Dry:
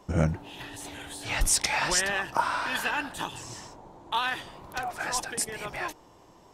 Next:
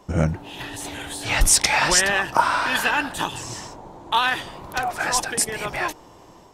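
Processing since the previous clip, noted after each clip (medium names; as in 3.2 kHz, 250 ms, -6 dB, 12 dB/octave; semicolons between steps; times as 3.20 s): level rider gain up to 4.5 dB; trim +3.5 dB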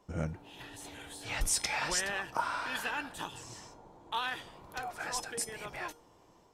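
feedback comb 470 Hz, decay 0.31 s, harmonics odd, mix 70%; trim -4.5 dB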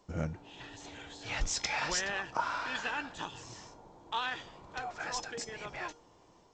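G.722 64 kbps 16 kHz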